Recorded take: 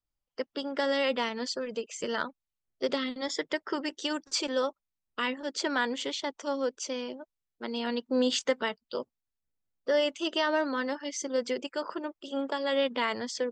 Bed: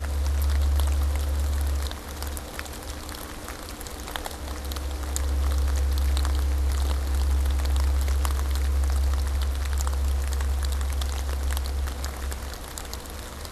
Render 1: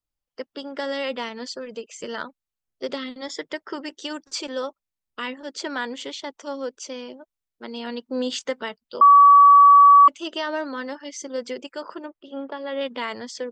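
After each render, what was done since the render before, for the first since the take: 9.01–10.08 s: bleep 1.14 kHz -7.5 dBFS; 12.06–12.81 s: distance through air 280 m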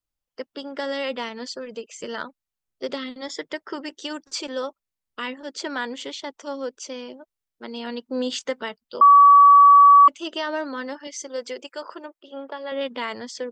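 11.07–12.72 s: tone controls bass -14 dB, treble +2 dB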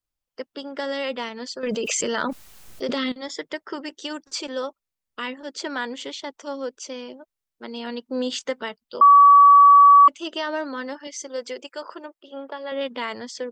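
1.63–3.12 s: level flattener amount 100%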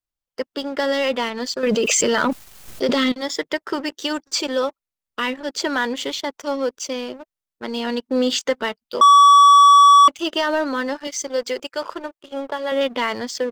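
waveshaping leveller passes 2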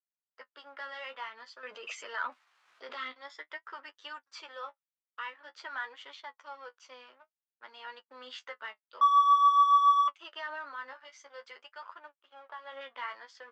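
flange 0.5 Hz, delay 9.8 ms, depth 6.2 ms, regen +31%; ladder band-pass 1.5 kHz, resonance 30%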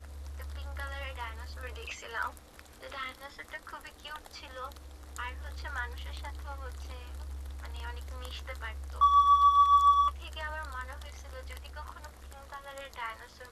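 add bed -18 dB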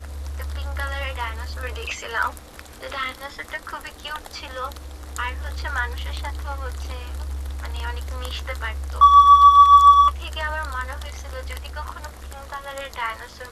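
trim +11.5 dB

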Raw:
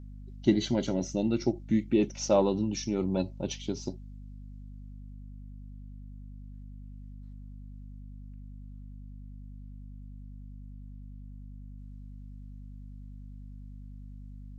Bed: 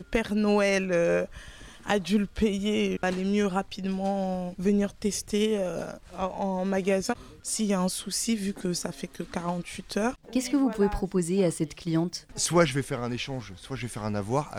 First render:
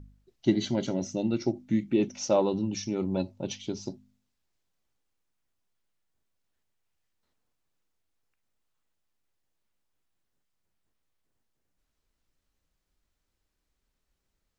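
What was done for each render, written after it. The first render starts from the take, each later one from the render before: de-hum 50 Hz, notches 5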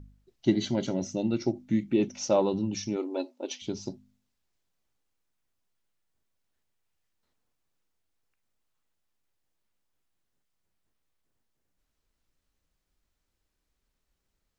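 2.96–3.62 s: brick-wall FIR high-pass 240 Hz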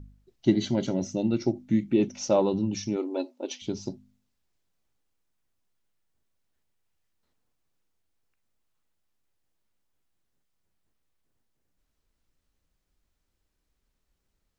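bass shelf 470 Hz +3 dB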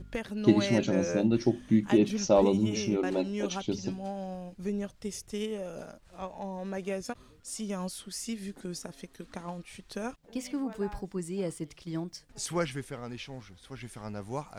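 add bed -9 dB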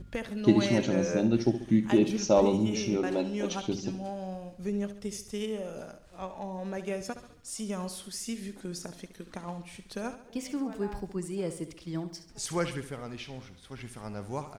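feedback delay 69 ms, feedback 49%, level -12 dB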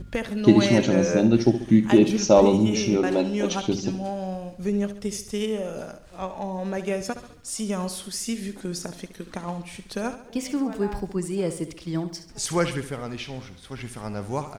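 trim +7 dB; peak limiter -3 dBFS, peak gain reduction 1 dB

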